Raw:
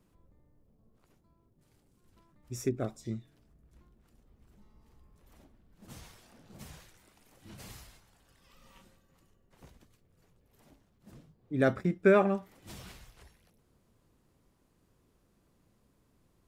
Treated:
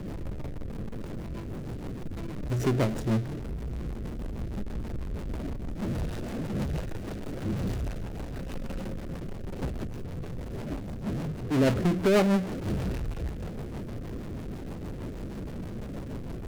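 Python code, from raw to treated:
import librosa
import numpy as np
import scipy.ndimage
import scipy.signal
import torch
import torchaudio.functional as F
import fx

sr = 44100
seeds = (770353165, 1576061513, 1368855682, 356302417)

y = scipy.ndimage.median_filter(x, 41, mode='constant')
y = fx.power_curve(y, sr, exponent=0.35)
y = fx.rotary(y, sr, hz=6.3)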